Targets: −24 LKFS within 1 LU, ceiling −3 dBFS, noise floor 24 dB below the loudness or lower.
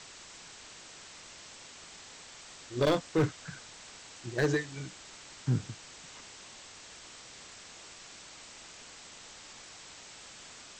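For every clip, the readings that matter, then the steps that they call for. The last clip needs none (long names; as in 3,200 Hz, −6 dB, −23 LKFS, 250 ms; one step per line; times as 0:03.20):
share of clipped samples 0.4%; peaks flattened at −21.0 dBFS; background noise floor −51 dBFS; target noise floor −62 dBFS; integrated loudness −38.0 LKFS; sample peak −21.0 dBFS; target loudness −24.0 LKFS
→ clipped peaks rebuilt −21 dBFS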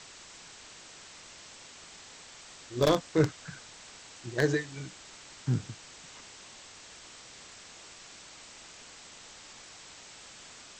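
share of clipped samples 0.0%; background noise floor −51 dBFS; target noise floor −55 dBFS
→ noise reduction from a noise print 6 dB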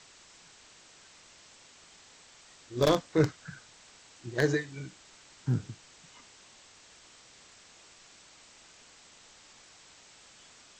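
background noise floor −57 dBFS; integrated loudness −30.5 LKFS; sample peak −12.0 dBFS; target loudness −24.0 LKFS
→ level +6.5 dB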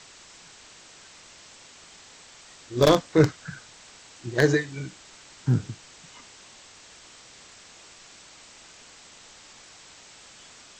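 integrated loudness −24.0 LKFS; sample peak −5.5 dBFS; background noise floor −50 dBFS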